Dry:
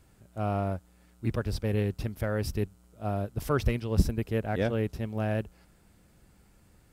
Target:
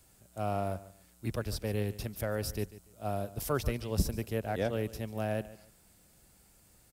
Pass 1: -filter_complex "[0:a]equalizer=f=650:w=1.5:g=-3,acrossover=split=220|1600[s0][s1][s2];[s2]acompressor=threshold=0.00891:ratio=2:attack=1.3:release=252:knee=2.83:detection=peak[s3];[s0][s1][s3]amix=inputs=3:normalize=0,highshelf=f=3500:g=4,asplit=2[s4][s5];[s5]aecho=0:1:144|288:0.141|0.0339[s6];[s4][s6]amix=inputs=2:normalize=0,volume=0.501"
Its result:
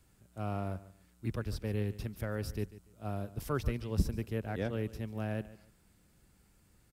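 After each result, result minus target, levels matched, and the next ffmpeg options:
8 kHz band -7.0 dB; 500 Hz band -2.5 dB
-filter_complex "[0:a]equalizer=f=650:w=1.5:g=-3,acrossover=split=220|1600[s0][s1][s2];[s2]acompressor=threshold=0.00891:ratio=2:attack=1.3:release=252:knee=2.83:detection=peak[s3];[s0][s1][s3]amix=inputs=3:normalize=0,highshelf=f=3500:g=15,asplit=2[s4][s5];[s5]aecho=0:1:144|288:0.141|0.0339[s6];[s4][s6]amix=inputs=2:normalize=0,volume=0.501"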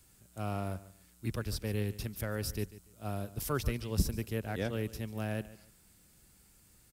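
500 Hz band -3.0 dB
-filter_complex "[0:a]equalizer=f=650:w=1.5:g=4.5,acrossover=split=220|1600[s0][s1][s2];[s2]acompressor=threshold=0.00891:ratio=2:attack=1.3:release=252:knee=2.83:detection=peak[s3];[s0][s1][s3]amix=inputs=3:normalize=0,highshelf=f=3500:g=15,asplit=2[s4][s5];[s5]aecho=0:1:144|288:0.141|0.0339[s6];[s4][s6]amix=inputs=2:normalize=0,volume=0.501"

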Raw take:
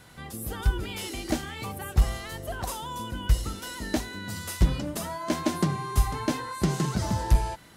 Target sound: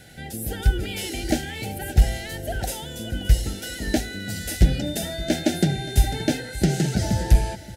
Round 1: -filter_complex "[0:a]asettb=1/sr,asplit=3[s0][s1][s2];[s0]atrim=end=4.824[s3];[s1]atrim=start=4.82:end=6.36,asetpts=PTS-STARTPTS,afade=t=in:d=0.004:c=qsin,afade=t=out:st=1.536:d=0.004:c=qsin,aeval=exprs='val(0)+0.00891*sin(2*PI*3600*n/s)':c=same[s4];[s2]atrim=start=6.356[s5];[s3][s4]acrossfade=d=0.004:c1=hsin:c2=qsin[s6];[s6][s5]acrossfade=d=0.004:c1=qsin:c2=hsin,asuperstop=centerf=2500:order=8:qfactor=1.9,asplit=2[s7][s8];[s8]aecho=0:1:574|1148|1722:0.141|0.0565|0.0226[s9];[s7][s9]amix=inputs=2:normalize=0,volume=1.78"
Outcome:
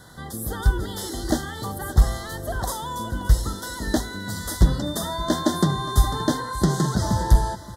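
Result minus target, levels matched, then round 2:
1 kHz band +7.0 dB
-filter_complex "[0:a]asettb=1/sr,asplit=3[s0][s1][s2];[s0]atrim=end=4.824[s3];[s1]atrim=start=4.82:end=6.36,asetpts=PTS-STARTPTS,afade=t=in:d=0.004:c=qsin,afade=t=out:st=1.536:d=0.004:c=qsin,aeval=exprs='val(0)+0.00891*sin(2*PI*3600*n/s)':c=same[s4];[s2]atrim=start=6.356[s5];[s3][s4]acrossfade=d=0.004:c1=hsin:c2=qsin[s6];[s6][s5]acrossfade=d=0.004:c1=qsin:c2=hsin,asuperstop=centerf=1100:order=8:qfactor=1.9,asplit=2[s7][s8];[s8]aecho=0:1:574|1148|1722:0.141|0.0565|0.0226[s9];[s7][s9]amix=inputs=2:normalize=0,volume=1.78"

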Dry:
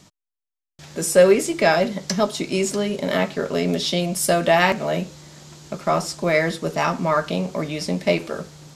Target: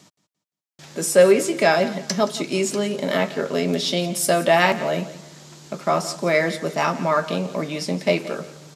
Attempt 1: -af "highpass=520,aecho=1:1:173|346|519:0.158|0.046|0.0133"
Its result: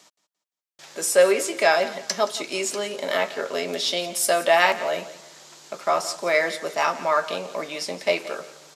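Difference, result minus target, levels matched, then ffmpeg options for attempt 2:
125 Hz band -15.0 dB
-af "highpass=150,aecho=1:1:173|346|519:0.158|0.046|0.0133"

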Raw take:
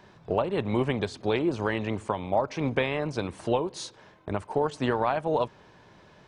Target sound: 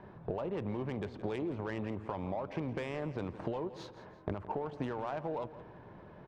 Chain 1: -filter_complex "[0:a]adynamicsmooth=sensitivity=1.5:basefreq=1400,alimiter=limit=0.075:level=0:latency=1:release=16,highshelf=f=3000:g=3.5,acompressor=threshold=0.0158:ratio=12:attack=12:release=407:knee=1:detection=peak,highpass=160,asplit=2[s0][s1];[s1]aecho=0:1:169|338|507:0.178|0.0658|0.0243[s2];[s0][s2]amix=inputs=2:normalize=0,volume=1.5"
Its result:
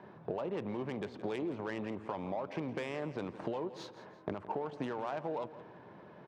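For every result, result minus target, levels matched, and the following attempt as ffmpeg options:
125 Hz band -4.5 dB; 8 kHz band +3.5 dB
-filter_complex "[0:a]adynamicsmooth=sensitivity=1.5:basefreq=1400,alimiter=limit=0.075:level=0:latency=1:release=16,highshelf=f=3000:g=3.5,acompressor=threshold=0.0158:ratio=12:attack=12:release=407:knee=1:detection=peak,asplit=2[s0][s1];[s1]aecho=0:1:169|338|507:0.178|0.0658|0.0243[s2];[s0][s2]amix=inputs=2:normalize=0,volume=1.5"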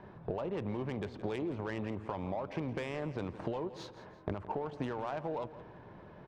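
8 kHz band +3.0 dB
-filter_complex "[0:a]adynamicsmooth=sensitivity=1.5:basefreq=1400,alimiter=limit=0.075:level=0:latency=1:release=16,acompressor=threshold=0.0158:ratio=12:attack=12:release=407:knee=1:detection=peak,asplit=2[s0][s1];[s1]aecho=0:1:169|338|507:0.178|0.0658|0.0243[s2];[s0][s2]amix=inputs=2:normalize=0,volume=1.5"

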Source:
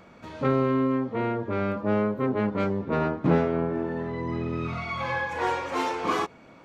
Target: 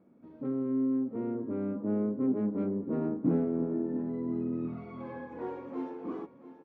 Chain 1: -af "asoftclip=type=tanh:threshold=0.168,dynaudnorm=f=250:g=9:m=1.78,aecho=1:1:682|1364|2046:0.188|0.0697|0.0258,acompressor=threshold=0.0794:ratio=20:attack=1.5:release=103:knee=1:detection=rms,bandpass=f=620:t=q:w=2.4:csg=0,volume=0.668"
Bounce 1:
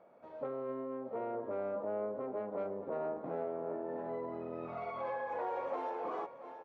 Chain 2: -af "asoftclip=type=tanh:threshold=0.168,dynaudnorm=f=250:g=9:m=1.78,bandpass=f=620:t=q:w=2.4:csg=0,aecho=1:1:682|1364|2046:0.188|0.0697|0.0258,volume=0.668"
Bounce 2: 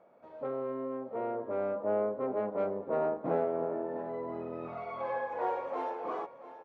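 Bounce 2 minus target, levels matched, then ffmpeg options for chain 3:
250 Hz band -9.5 dB
-af "asoftclip=type=tanh:threshold=0.168,dynaudnorm=f=250:g=9:m=1.78,bandpass=f=270:t=q:w=2.4:csg=0,aecho=1:1:682|1364|2046:0.188|0.0697|0.0258,volume=0.668"

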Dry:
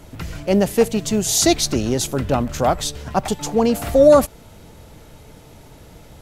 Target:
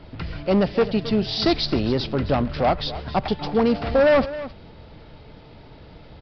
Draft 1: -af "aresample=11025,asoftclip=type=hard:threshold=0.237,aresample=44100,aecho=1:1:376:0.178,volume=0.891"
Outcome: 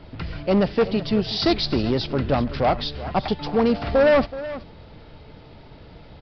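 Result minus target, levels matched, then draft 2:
echo 110 ms late
-af "aresample=11025,asoftclip=type=hard:threshold=0.237,aresample=44100,aecho=1:1:266:0.178,volume=0.891"

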